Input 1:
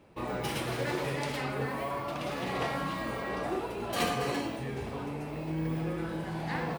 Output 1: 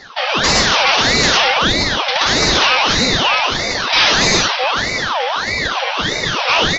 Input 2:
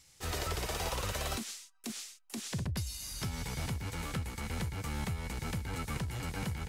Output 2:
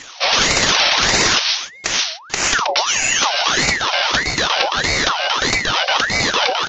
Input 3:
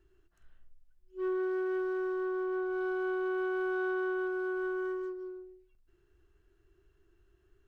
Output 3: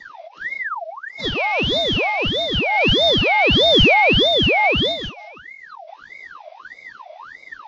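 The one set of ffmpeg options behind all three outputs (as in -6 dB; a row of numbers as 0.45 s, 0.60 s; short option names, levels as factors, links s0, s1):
-filter_complex "[0:a]afftfilt=real='re*(1-between(b*sr/4096,160,1400))':imag='im*(1-between(b*sr/4096,160,1400))':win_size=4096:overlap=0.75,apsyclip=44.7,acrossover=split=170|1200[s0][s1][s2];[s0]acompressor=threshold=0.141:ratio=12[s3];[s3][s1][s2]amix=inputs=3:normalize=0,highshelf=f=3300:g=6,aresample=11025,asoftclip=type=hard:threshold=0.708,aresample=44100,aeval=exprs='val(0)*sin(2*PI*1400*n/s+1400*0.55/1.6*sin(2*PI*1.6*n/s))':c=same,volume=0.708"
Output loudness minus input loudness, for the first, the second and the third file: +20.5 LU, +22.5 LU, +18.0 LU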